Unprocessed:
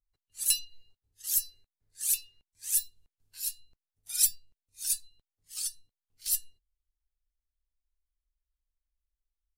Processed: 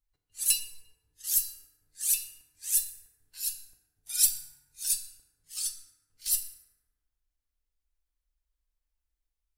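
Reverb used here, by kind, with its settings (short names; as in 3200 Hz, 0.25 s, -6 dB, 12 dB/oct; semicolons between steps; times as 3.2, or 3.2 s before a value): FDN reverb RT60 1.3 s, low-frequency decay 1.1×, high-frequency decay 0.45×, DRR 5 dB; gain +1 dB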